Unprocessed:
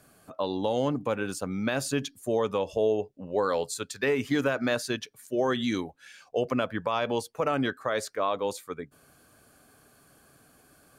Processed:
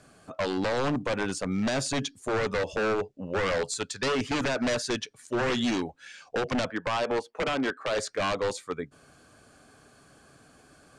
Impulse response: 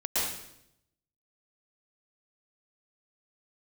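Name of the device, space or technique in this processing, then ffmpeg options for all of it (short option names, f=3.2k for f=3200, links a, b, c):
synthesiser wavefolder: -filter_complex "[0:a]asettb=1/sr,asplit=3[a][b][c];[a]atrim=end=6.704[d];[b]atrim=start=6.7:end=7.98,asetpts=PTS-STARTPTS,afade=t=in:d=0.004:c=qsin,afade=t=out:st=1.276:d=0.004:c=qsin,acrossover=split=240 2700:gain=0.126 1 0.224[e][f][g];[e][f][g]amix=inputs=3:normalize=0[h];[c]atrim=start=7.976[i];[d][h]acrossfade=d=0.004:c1=hsin:c2=qsin[j];[j][i]acrossfade=d=0.004:c1=qsin:c2=hsin,aeval=exprs='0.0562*(abs(mod(val(0)/0.0562+3,4)-2)-1)':c=same,lowpass=f=8.5k:w=0.5412,lowpass=f=8.5k:w=1.3066,volume=3.5dB"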